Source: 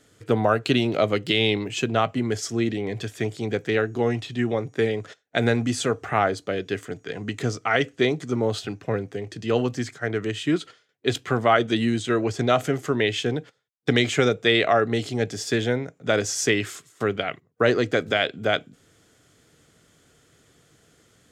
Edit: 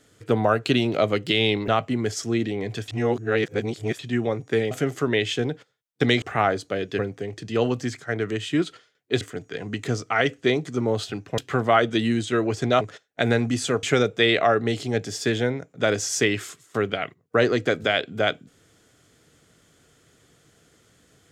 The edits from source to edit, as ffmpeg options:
-filter_complex "[0:a]asplit=11[s0][s1][s2][s3][s4][s5][s6][s7][s8][s9][s10];[s0]atrim=end=1.682[s11];[s1]atrim=start=1.938:end=3.142[s12];[s2]atrim=start=3.138:end=4.252,asetpts=PTS-STARTPTS,areverse[s13];[s3]atrim=start=4.248:end=4.972[s14];[s4]atrim=start=12.578:end=14.092[s15];[s5]atrim=start=5.988:end=6.762[s16];[s6]atrim=start=8.928:end=11.152[s17];[s7]atrim=start=6.758:end=8.932[s18];[s8]atrim=start=11.148:end=12.582[s19];[s9]atrim=start=4.968:end=5.992[s20];[s10]atrim=start=14.088[s21];[s11][s12]acrossfade=d=0.004:c1=hsin:c2=hsin[s22];[s22][s13]acrossfade=d=0.004:c1=hsin:c2=hsin[s23];[s23][s14]acrossfade=d=0.004:c1=hsin:c2=hsin[s24];[s24][s15]acrossfade=d=0.004:c1=hsin:c2=hsin[s25];[s25][s16]acrossfade=d=0.004:c1=hsin:c2=hsin[s26];[s26][s17]acrossfade=d=0.004:c1=hsin:c2=hsin[s27];[s27][s18]acrossfade=d=0.004:c1=hsin:c2=hsin[s28];[s28][s19]acrossfade=d=0.004:c1=hsin:c2=hsin[s29];[s29][s20]acrossfade=d=0.004:c1=hsin:c2=hsin[s30];[s30][s21]acrossfade=d=0.004:c1=hsin:c2=hsin"

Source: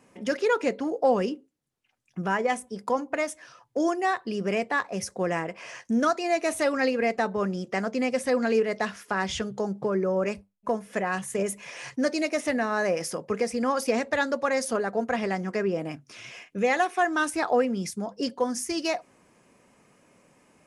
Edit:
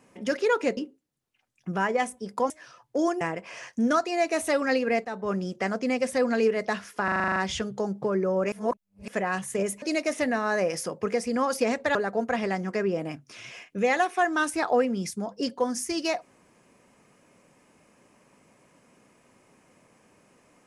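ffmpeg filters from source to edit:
-filter_complex "[0:a]asplit=17[s0][s1][s2][s3][s4][s5][s6][s7][s8][s9][s10][s11][s12][s13][s14][s15][s16];[s0]atrim=end=0.772[s17];[s1]atrim=start=1.268:end=3.002[s18];[s2]atrim=start=3.308:end=4.022[s19];[s3]atrim=start=5.328:end=7.17,asetpts=PTS-STARTPTS,afade=t=out:st=1.838:d=0.004:c=hsin:silence=0.251189[s20];[s4]atrim=start=7.17:end=9.202,asetpts=PTS-STARTPTS,afade=t=in:d=0.31:silence=0.251189[s21];[s5]atrim=start=9.158:end=9.202[s22];[s6]atrim=start=9.158:end=9.202[s23];[s7]atrim=start=9.158:end=9.202[s24];[s8]atrim=start=9.158:end=9.202[s25];[s9]atrim=start=9.158:end=9.202[s26];[s10]atrim=start=9.158:end=9.202[s27];[s11]atrim=start=9.158:end=9.202[s28];[s12]atrim=start=9.158:end=10.322[s29];[s13]atrim=start=10.318:end=10.882,asetpts=PTS-STARTPTS,areverse[s30];[s14]atrim=start=10.878:end=11.622[s31];[s15]atrim=start=12.088:end=14.222[s32];[s16]atrim=start=14.748[s33];[s17][s18]acrossfade=d=0.004:c1=hsin:c2=hsin[s34];[s34][s19]acrossfade=d=0.004:c1=hsin:c2=hsin[s35];[s20][s21]concat=n=2:v=0:a=1[s36];[s35][s36]acrossfade=d=0.004:c1=hsin:c2=hsin[s37];[s37][s22]acrossfade=d=0.004:c1=hsin:c2=hsin[s38];[s38][s23]acrossfade=d=0.004:c1=hsin:c2=hsin[s39];[s39][s24]acrossfade=d=0.004:c1=hsin:c2=hsin[s40];[s40][s25]acrossfade=d=0.004:c1=hsin:c2=hsin[s41];[s41][s26]acrossfade=d=0.004:c1=hsin:c2=hsin[s42];[s42][s27]acrossfade=d=0.004:c1=hsin:c2=hsin[s43];[s43][s28]acrossfade=d=0.004:c1=hsin:c2=hsin[s44];[s44][s29]acrossfade=d=0.004:c1=hsin:c2=hsin[s45];[s45][s30]acrossfade=d=0.004:c1=hsin:c2=hsin[s46];[s46][s31]acrossfade=d=0.004:c1=hsin:c2=hsin[s47];[s47][s32]acrossfade=d=0.004:c1=hsin:c2=hsin[s48];[s48][s33]acrossfade=d=0.004:c1=hsin:c2=hsin"

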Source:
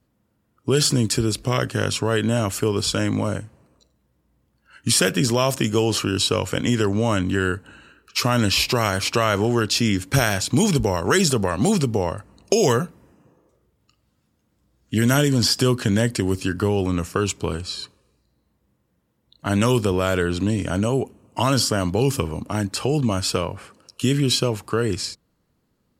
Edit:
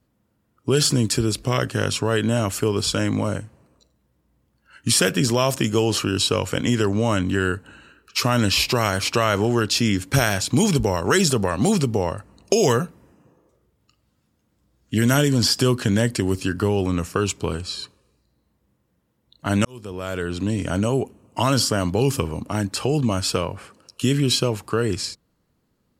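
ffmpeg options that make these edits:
-filter_complex "[0:a]asplit=2[s0][s1];[s0]atrim=end=19.65,asetpts=PTS-STARTPTS,afade=t=out:st=19.646:d=0.004:c=hsin[s2];[s1]atrim=start=19.65,asetpts=PTS-STARTPTS,afade=t=in:d=1.04[s3];[s2][s3]concat=n=2:v=0:a=1"

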